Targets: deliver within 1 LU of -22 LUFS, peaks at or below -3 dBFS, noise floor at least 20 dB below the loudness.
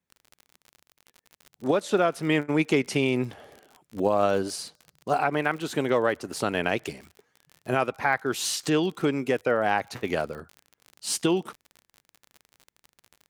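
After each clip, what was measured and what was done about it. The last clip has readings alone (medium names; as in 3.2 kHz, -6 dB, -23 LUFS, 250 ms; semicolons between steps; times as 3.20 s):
tick rate 42 per s; loudness -26.5 LUFS; peak level -9.0 dBFS; loudness target -22.0 LUFS
-> de-click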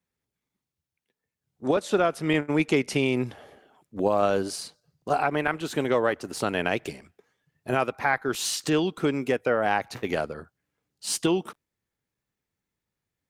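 tick rate 0.15 per s; loudness -26.5 LUFS; peak level -9.0 dBFS; loudness target -22.0 LUFS
-> trim +4.5 dB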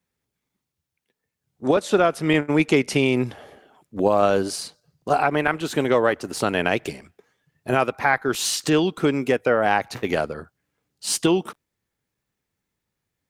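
loudness -22.0 LUFS; peak level -4.5 dBFS; noise floor -82 dBFS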